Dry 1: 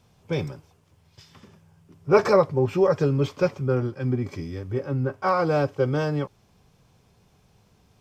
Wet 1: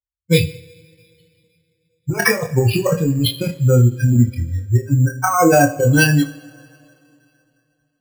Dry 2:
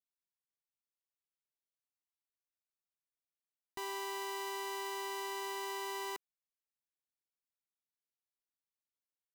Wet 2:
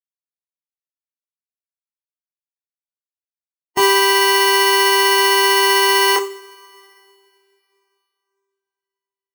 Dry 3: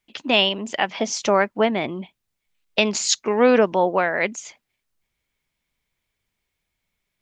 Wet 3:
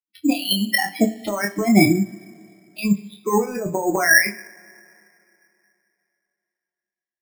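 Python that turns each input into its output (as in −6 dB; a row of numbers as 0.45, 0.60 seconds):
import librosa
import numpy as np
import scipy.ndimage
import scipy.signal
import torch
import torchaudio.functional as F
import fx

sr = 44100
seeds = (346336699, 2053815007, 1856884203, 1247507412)

y = fx.bin_expand(x, sr, power=3.0)
y = fx.highpass(y, sr, hz=170.0, slope=6)
y = fx.dynamic_eq(y, sr, hz=2700.0, q=1.9, threshold_db=-44.0, ratio=4.0, max_db=8)
y = fx.over_compress(y, sr, threshold_db=-35.0, ratio=-1.0)
y = fx.room_early_taps(y, sr, ms=(25, 35), db=(-5.0, -11.0))
y = fx.rev_double_slope(y, sr, seeds[0], early_s=0.6, late_s=3.0, knee_db=-18, drr_db=11.0)
y = np.repeat(scipy.signal.resample_poly(y, 1, 6), 6)[:len(y)]
y = fx.end_taper(y, sr, db_per_s=430.0)
y = y * 10.0 ** (-1.5 / 20.0) / np.max(np.abs(y))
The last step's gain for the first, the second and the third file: +19.0, +29.5, +13.0 decibels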